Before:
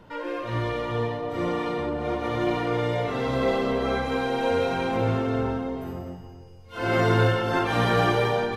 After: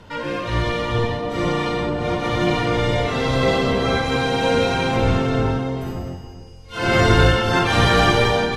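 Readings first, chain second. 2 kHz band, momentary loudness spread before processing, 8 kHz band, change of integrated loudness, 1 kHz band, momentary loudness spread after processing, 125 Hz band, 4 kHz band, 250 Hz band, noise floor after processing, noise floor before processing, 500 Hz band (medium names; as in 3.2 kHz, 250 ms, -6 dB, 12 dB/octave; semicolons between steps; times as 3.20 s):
+8.0 dB, 10 LU, no reading, +6.0 dB, +5.5 dB, 11 LU, +6.5 dB, +11.0 dB, +5.5 dB, -38 dBFS, -44 dBFS, +4.5 dB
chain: octave divider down 1 oct, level 0 dB; low-pass 8.7 kHz 12 dB/octave; treble shelf 2.5 kHz +11 dB; trim +4 dB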